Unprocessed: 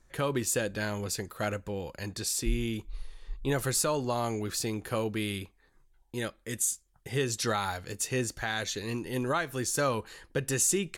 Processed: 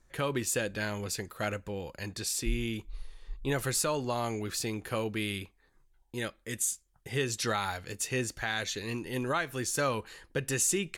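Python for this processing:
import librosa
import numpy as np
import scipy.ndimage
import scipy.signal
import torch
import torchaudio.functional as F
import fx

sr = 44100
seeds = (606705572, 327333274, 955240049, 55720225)

y = fx.dynamic_eq(x, sr, hz=2400.0, q=1.2, threshold_db=-49.0, ratio=4.0, max_db=4)
y = F.gain(torch.from_numpy(y), -2.0).numpy()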